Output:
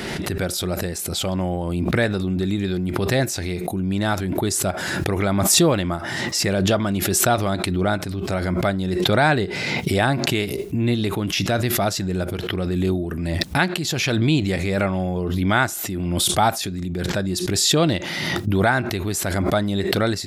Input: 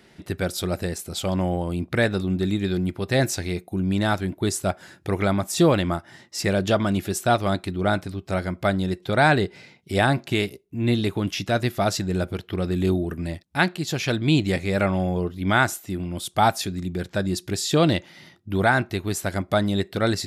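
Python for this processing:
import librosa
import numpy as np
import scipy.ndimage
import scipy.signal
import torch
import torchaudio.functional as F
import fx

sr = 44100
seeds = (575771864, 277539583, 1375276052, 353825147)

y = fx.pre_swell(x, sr, db_per_s=22.0)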